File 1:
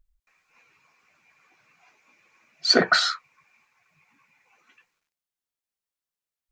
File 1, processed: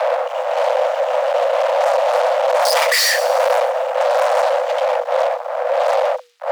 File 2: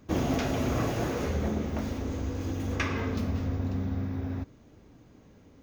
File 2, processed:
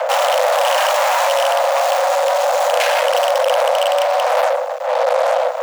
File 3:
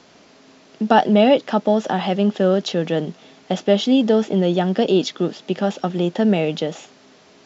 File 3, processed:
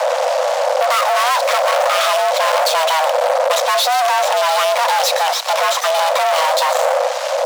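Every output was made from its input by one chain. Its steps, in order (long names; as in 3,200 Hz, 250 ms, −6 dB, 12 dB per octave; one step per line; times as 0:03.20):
loose part that buzzes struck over −26 dBFS, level −17 dBFS
wind on the microphone 180 Hz −25 dBFS
in parallel at +1 dB: downward compressor, threshold −26 dBFS
on the sum: fuzz pedal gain 37 dB, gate −40 dBFS
on a send: delay with a high-pass on its return 121 ms, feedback 47%, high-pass 3,900 Hz, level −11.5 dB
on the sum: frequency shifter +480 Hz
level −1 dB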